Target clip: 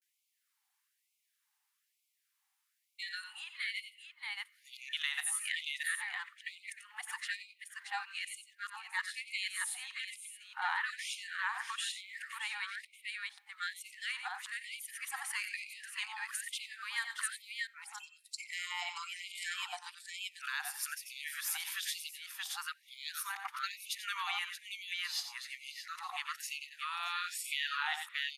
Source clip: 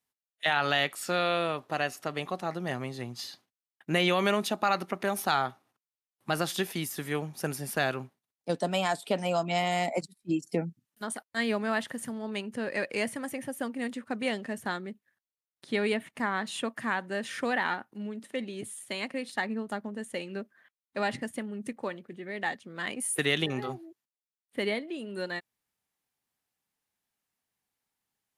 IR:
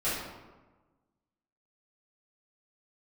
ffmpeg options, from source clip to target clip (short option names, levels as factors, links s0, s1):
-filter_complex "[0:a]areverse,atempo=1,aecho=1:1:90|108|627:0.282|0.112|0.355,asplit=2[s0][s1];[1:a]atrim=start_sample=2205[s2];[s1][s2]afir=irnorm=-1:irlink=0,volume=0.0282[s3];[s0][s3]amix=inputs=2:normalize=0,acompressor=threshold=0.02:ratio=6,afftfilt=real='re*gte(b*sr/1024,720*pow(2100/720,0.5+0.5*sin(2*PI*1.1*pts/sr)))':imag='im*gte(b*sr/1024,720*pow(2100/720,0.5+0.5*sin(2*PI*1.1*pts/sr)))':win_size=1024:overlap=0.75,volume=1.58"